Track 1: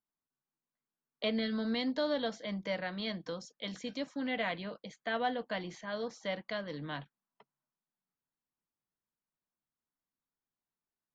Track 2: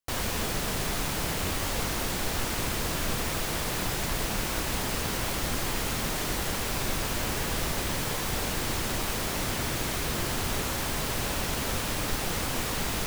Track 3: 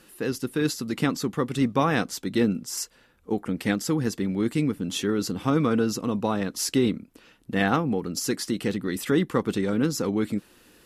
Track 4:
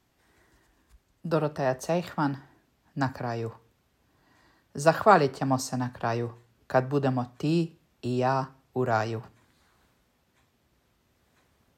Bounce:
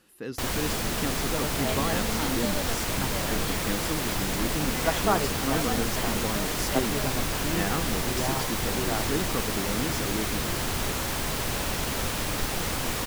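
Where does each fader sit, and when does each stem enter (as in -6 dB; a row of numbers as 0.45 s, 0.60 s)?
-2.0 dB, +1.0 dB, -8.0 dB, -7.0 dB; 0.45 s, 0.30 s, 0.00 s, 0.00 s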